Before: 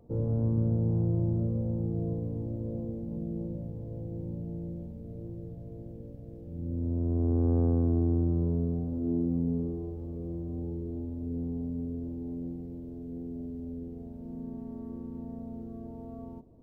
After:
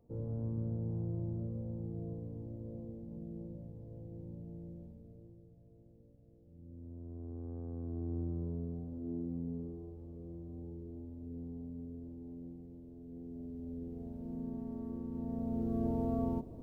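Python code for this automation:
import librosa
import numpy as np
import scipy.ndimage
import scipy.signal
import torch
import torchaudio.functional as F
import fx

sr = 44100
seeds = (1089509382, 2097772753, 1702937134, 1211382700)

y = fx.gain(x, sr, db=fx.line((4.9, -10.0), (5.46, -18.0), (7.64, -18.0), (8.19, -10.5), (12.95, -10.5), (14.09, -1.5), (15.08, -1.5), (15.86, 9.0)))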